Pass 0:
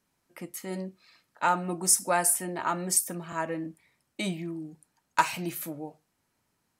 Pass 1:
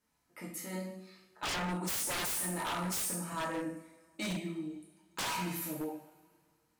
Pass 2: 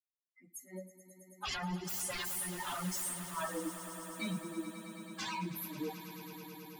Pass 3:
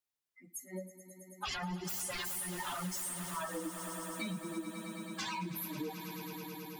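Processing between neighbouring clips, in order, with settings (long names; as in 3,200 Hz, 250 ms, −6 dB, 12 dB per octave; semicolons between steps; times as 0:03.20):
coupled-rooms reverb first 0.62 s, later 2.1 s, from −22 dB, DRR −5 dB; wave folding −22 dBFS; level −8 dB
spectral dynamics exaggerated over time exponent 3; on a send: echo that builds up and dies away 108 ms, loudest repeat 5, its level −15 dB; on the sum: level +3 dB
downward compressor, threshold −40 dBFS, peak gain reduction 7 dB; level +4 dB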